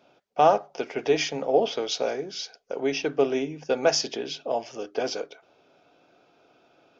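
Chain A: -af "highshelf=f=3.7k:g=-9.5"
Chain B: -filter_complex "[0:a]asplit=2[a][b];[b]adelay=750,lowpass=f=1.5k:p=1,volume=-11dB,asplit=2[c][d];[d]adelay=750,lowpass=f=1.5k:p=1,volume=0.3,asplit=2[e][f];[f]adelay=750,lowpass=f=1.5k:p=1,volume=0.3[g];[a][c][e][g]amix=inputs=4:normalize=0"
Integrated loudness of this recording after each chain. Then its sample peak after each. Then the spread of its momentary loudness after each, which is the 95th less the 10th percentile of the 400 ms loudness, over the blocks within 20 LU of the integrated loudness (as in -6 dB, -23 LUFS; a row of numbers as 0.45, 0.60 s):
-27.0, -26.0 LUFS; -7.5, -7.0 dBFS; 14, 17 LU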